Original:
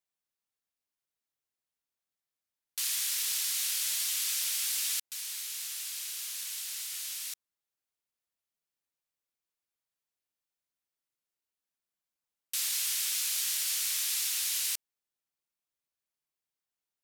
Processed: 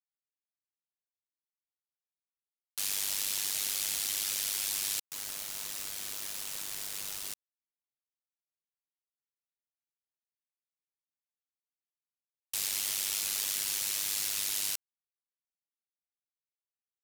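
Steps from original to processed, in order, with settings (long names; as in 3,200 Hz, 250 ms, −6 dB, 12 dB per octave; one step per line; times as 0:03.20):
hum removal 238.4 Hz, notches 19
bit reduction 6 bits
amplitude modulation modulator 100 Hz, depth 65%
level +1.5 dB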